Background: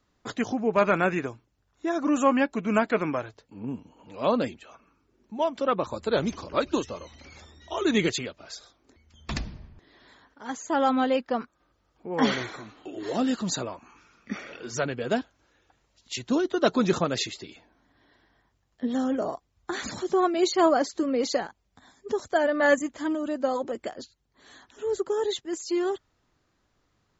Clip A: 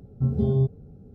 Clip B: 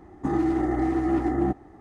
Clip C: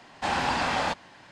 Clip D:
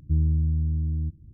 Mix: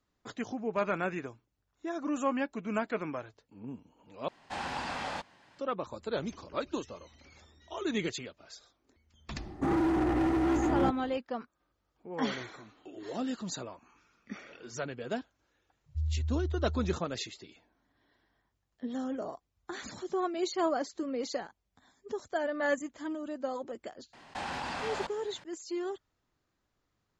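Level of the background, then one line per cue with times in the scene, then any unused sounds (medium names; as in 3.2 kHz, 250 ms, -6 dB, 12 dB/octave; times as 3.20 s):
background -9 dB
4.28 s: replace with C -10 dB
9.38 s: add B + hard clipper -25 dBFS
15.86 s: add D -8.5 dB + loudest bins only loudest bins 2
24.13 s: add C -1 dB + level held to a coarse grid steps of 18 dB
not used: A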